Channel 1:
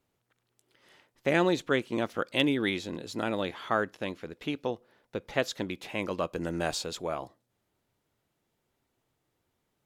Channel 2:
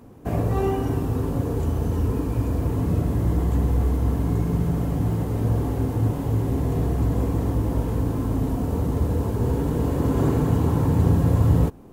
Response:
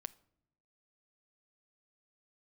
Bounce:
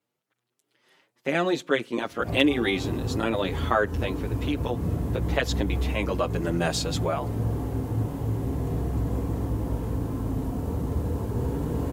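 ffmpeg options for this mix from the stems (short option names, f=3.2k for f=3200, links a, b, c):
-filter_complex "[0:a]highpass=140,dynaudnorm=f=130:g=21:m=10dB,asplit=2[a][b];[b]adelay=6.8,afreqshift=2.8[c];[a][c]amix=inputs=2:normalize=1,volume=-3dB,asplit=3[d][e][f];[e]volume=-5.5dB[g];[1:a]adelay=1950,volume=-5dB[h];[f]apad=whole_len=611918[i];[h][i]sidechaincompress=threshold=-29dB:ratio=8:attack=9.1:release=196[j];[2:a]atrim=start_sample=2205[k];[g][k]afir=irnorm=-1:irlink=0[l];[d][j][l]amix=inputs=3:normalize=0"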